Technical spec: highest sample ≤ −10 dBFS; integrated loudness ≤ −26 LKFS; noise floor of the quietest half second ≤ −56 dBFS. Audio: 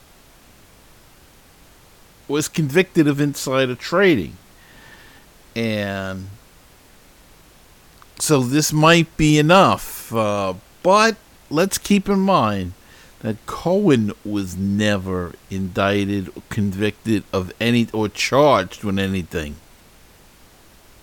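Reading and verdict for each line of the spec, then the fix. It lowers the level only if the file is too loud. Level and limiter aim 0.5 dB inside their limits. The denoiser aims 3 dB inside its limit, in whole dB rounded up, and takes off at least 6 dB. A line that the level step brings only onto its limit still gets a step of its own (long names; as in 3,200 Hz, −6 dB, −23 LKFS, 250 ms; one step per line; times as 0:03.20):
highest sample −3.0 dBFS: out of spec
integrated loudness −19.0 LKFS: out of spec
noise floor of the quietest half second −49 dBFS: out of spec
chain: level −7.5 dB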